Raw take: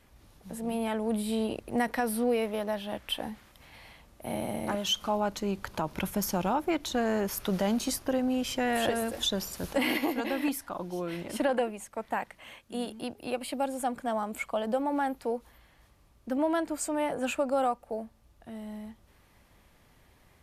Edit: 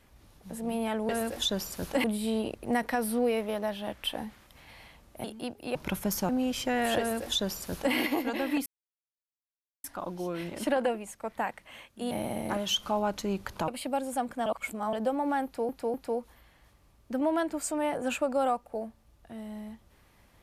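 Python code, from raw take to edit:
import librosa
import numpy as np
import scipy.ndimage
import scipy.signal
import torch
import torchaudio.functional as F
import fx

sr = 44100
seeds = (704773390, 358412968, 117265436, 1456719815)

y = fx.edit(x, sr, fx.swap(start_s=4.29, length_s=1.57, other_s=12.84, other_length_s=0.51),
    fx.cut(start_s=6.4, length_s=1.8),
    fx.duplicate(start_s=8.9, length_s=0.95, to_s=1.09),
    fx.insert_silence(at_s=10.57, length_s=1.18),
    fx.reverse_span(start_s=14.13, length_s=0.47),
    fx.repeat(start_s=15.11, length_s=0.25, count=3), tone=tone)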